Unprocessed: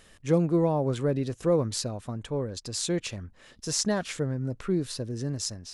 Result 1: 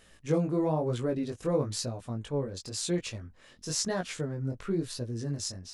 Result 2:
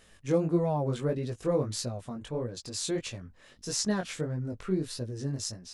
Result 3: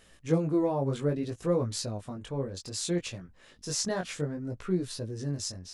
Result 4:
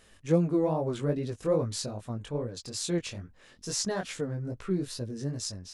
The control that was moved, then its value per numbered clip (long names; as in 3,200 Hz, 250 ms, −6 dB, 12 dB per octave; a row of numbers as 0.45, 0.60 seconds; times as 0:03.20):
chorus effect, speed: 1, 1.6, 0.63, 2.4 Hertz